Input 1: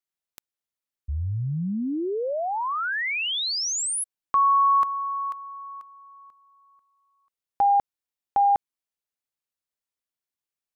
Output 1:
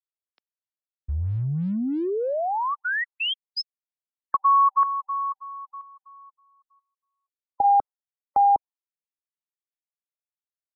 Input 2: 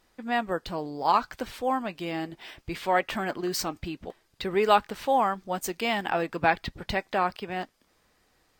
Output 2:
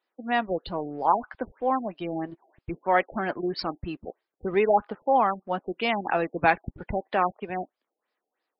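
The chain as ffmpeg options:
-filter_complex "[0:a]afftdn=nr=15:nf=-40,acrossover=split=280[s0][s1];[s0]aeval=exprs='sgn(val(0))*max(abs(val(0))-0.00237,0)':c=same[s2];[s2][s1]amix=inputs=2:normalize=0,afftfilt=real='re*lt(b*sr/1024,800*pow(5500/800,0.5+0.5*sin(2*PI*3.1*pts/sr)))':imag='im*lt(b*sr/1024,800*pow(5500/800,0.5+0.5*sin(2*PI*3.1*pts/sr)))':win_size=1024:overlap=0.75,volume=1.26"

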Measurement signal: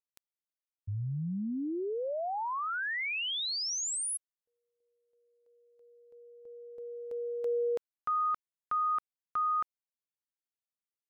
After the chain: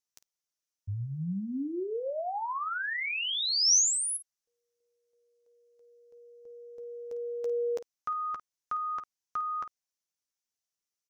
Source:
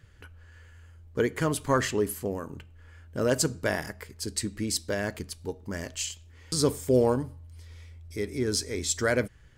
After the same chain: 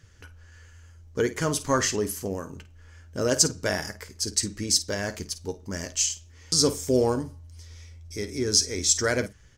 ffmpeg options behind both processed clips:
-filter_complex "[0:a]equalizer=f=5900:w=2:g=12.5,asplit=2[s0][s1];[s1]aecho=0:1:11|52:0.282|0.211[s2];[s0][s2]amix=inputs=2:normalize=0"

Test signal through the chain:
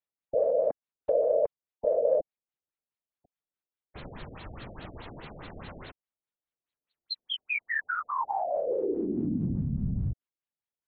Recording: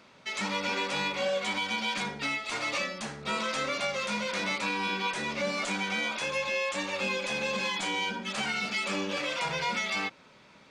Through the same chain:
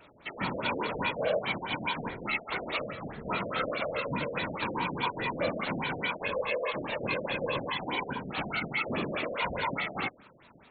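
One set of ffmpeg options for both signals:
-af "afftfilt=real='hypot(re,im)*cos(2*PI*random(0))':imag='hypot(re,im)*sin(2*PI*random(1))':win_size=512:overlap=0.75,acontrast=82,afftfilt=real='re*lt(b*sr/1024,700*pow(4500/700,0.5+0.5*sin(2*PI*4.8*pts/sr)))':imag='im*lt(b*sr/1024,700*pow(4500/700,0.5+0.5*sin(2*PI*4.8*pts/sr)))':win_size=1024:overlap=0.75"

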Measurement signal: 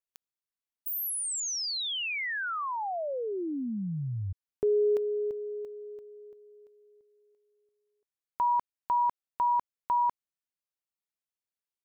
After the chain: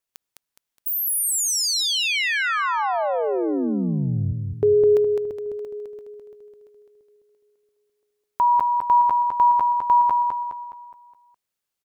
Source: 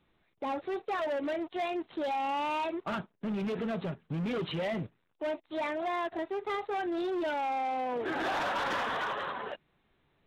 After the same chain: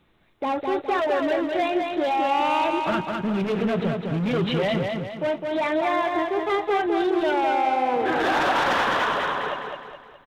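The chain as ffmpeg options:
-af "aecho=1:1:208|416|624|832|1040|1248:0.631|0.278|0.122|0.0537|0.0236|0.0104,volume=2.66"

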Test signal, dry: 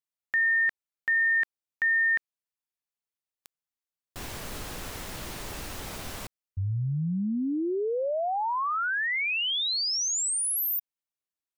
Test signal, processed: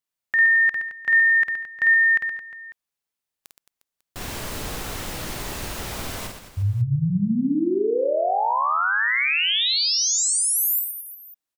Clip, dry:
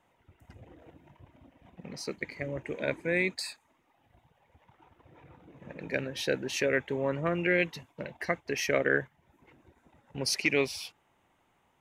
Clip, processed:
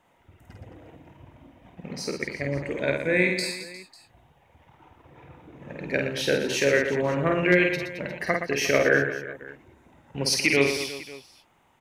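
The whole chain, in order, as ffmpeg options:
-af "aecho=1:1:50|120|218|355.2|547.3:0.631|0.398|0.251|0.158|0.1,asoftclip=type=hard:threshold=0.266,volume=1.68"

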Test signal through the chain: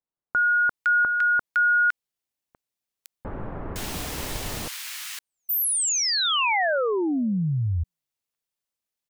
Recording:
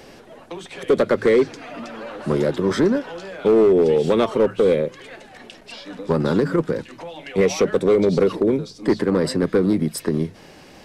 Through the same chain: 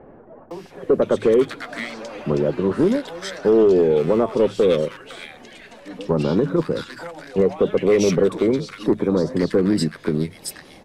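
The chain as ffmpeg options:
-filter_complex "[0:a]acrossover=split=1400[s0][s1];[s1]adelay=510[s2];[s0][s2]amix=inputs=2:normalize=0"

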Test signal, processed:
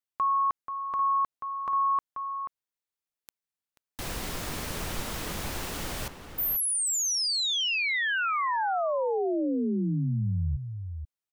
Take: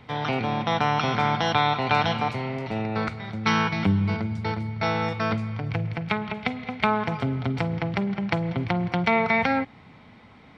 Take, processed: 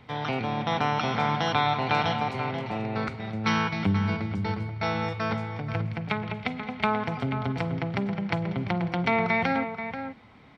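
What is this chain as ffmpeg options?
-filter_complex "[0:a]asplit=2[s0][s1];[s1]adelay=484,volume=0.398,highshelf=f=4000:g=-10.9[s2];[s0][s2]amix=inputs=2:normalize=0,volume=0.708"

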